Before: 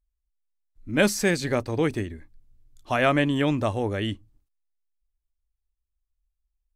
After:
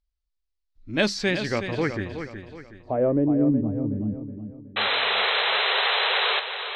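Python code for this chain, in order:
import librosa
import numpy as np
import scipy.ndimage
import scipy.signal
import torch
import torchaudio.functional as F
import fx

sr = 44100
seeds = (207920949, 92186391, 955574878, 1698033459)

p1 = fx.wow_flutter(x, sr, seeds[0], rate_hz=2.1, depth_cents=84.0)
p2 = fx.filter_sweep_lowpass(p1, sr, from_hz=4600.0, to_hz=220.0, start_s=1.1, end_s=3.72, q=2.4)
p3 = fx.spec_paint(p2, sr, seeds[1], shape='noise', start_s=4.76, length_s=1.64, low_hz=380.0, high_hz=4100.0, level_db=-21.0)
p4 = p3 + fx.echo_feedback(p3, sr, ms=370, feedback_pct=39, wet_db=-9, dry=0)
y = p4 * librosa.db_to_amplitude(-2.5)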